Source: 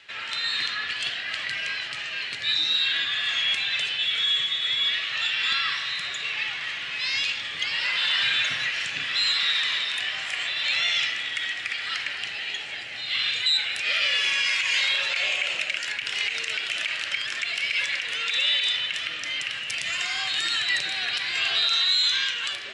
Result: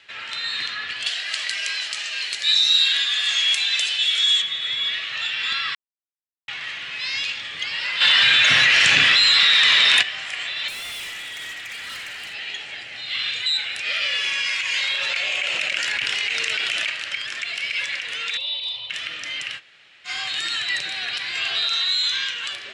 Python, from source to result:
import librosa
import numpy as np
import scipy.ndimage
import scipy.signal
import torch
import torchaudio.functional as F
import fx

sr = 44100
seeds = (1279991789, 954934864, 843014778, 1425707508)

y = fx.bass_treble(x, sr, bass_db=-14, treble_db=15, at=(1.06, 4.42))
y = fx.env_flatten(y, sr, amount_pct=100, at=(8.0, 10.01), fade=0.02)
y = fx.clip_hard(y, sr, threshold_db=-31.0, at=(10.68, 12.34))
y = fx.env_flatten(y, sr, amount_pct=100, at=(15.01, 16.9))
y = fx.curve_eq(y, sr, hz=(120.0, 190.0, 330.0, 980.0, 1600.0, 2300.0, 4000.0, 6400.0, 10000.0), db=(0, -28, -10, 1, -30, -14, 0, -19, -14), at=(18.37, 18.9))
y = fx.edit(y, sr, fx.silence(start_s=5.75, length_s=0.73),
    fx.room_tone_fill(start_s=19.58, length_s=0.49, crossfade_s=0.06), tone=tone)